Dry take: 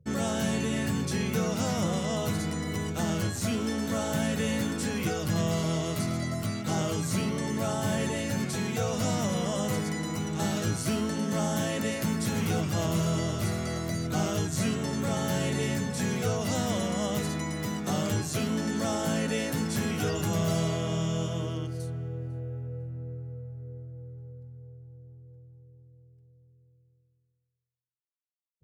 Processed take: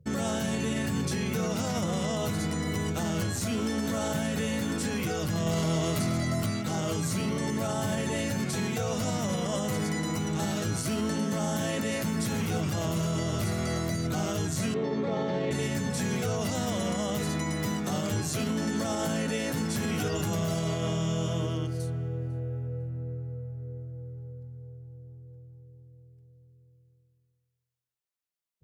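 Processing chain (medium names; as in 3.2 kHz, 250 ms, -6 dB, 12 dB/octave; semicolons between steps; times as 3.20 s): 5.46–6.46 s: waveshaping leveller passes 1; 14.74–15.51 s: cabinet simulation 180–3800 Hz, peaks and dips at 440 Hz +8 dB, 1.5 kHz -9 dB, 2.9 kHz -9 dB; peak limiter -23.5 dBFS, peak gain reduction 6.5 dB; trim +2.5 dB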